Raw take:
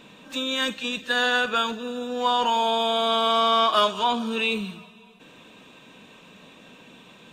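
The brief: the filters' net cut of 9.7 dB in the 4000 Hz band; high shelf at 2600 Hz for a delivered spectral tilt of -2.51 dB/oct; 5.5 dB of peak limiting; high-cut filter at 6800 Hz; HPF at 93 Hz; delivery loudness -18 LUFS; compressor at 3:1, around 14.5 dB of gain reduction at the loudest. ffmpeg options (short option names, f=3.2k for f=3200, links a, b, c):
-af "highpass=93,lowpass=6.8k,highshelf=f=2.6k:g=-6.5,equalizer=f=4k:t=o:g=-7,acompressor=threshold=-39dB:ratio=3,volume=21.5dB,alimiter=limit=-9.5dB:level=0:latency=1"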